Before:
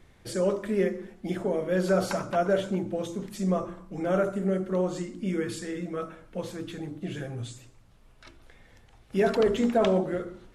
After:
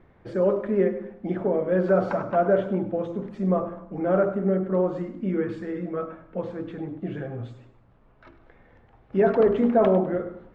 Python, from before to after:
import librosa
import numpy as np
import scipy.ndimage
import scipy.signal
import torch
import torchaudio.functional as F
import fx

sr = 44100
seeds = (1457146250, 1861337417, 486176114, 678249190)

y = scipy.signal.sosfilt(scipy.signal.butter(2, 1400.0, 'lowpass', fs=sr, output='sos'), x)
y = fx.low_shelf(y, sr, hz=110.0, db=-7.5)
y = fx.echo_feedback(y, sr, ms=101, feedback_pct=36, wet_db=-14.0)
y = F.gain(torch.from_numpy(y), 4.5).numpy()